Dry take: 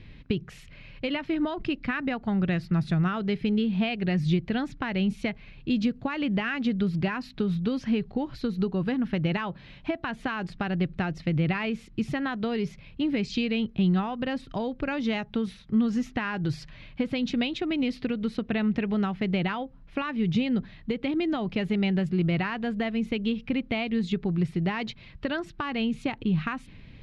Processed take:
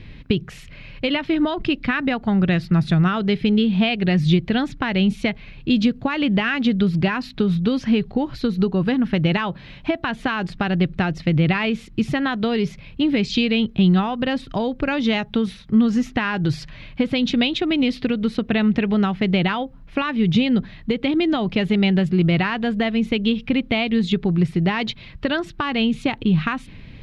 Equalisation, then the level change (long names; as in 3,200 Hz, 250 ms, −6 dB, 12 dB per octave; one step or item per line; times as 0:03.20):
dynamic equaliser 3,500 Hz, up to +5 dB, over −50 dBFS, Q 2.7
+7.5 dB